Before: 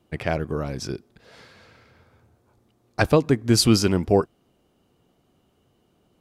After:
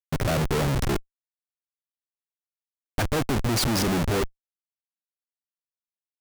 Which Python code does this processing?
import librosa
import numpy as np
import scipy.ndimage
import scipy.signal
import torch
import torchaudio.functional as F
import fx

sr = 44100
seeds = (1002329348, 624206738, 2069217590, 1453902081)

y = fx.wiener(x, sr, points=15)
y = y + 10.0 ** (-32.0 / 20.0) * np.sin(2.0 * np.pi * 9500.0 * np.arange(len(y)) / sr)
y = fx.schmitt(y, sr, flips_db=-27.0)
y = y * 10.0 ** (2.0 / 20.0)